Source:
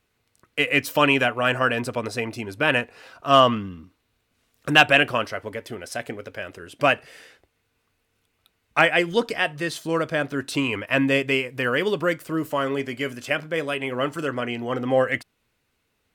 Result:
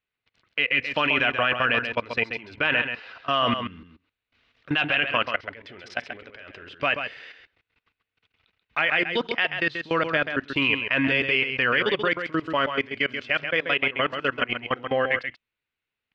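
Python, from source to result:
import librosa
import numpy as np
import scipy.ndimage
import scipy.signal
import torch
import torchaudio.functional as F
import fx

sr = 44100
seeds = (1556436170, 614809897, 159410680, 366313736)

p1 = scipy.signal.sosfilt(scipy.signal.butter(4, 4500.0, 'lowpass', fs=sr, output='sos'), x)
p2 = fx.peak_eq(p1, sr, hz=2400.0, db=10.0, octaves=2.2)
p3 = fx.level_steps(p2, sr, step_db=22)
y = p3 + fx.echo_single(p3, sr, ms=134, db=-7.5, dry=0)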